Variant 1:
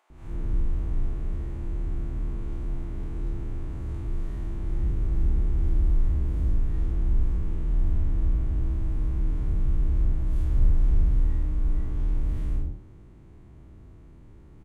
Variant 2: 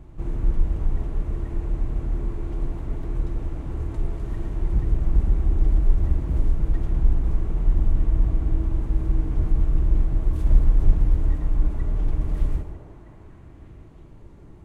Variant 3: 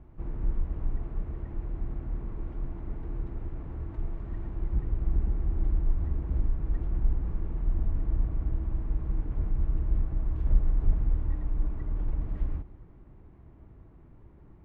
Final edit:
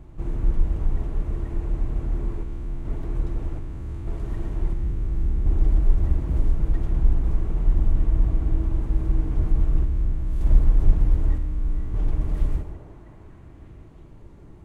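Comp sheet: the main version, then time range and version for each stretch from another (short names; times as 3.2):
2
2.43–2.85 from 1
3.59–4.07 from 1
4.73–5.46 from 1
9.85–10.41 from 1
11.38–11.94 from 1
not used: 3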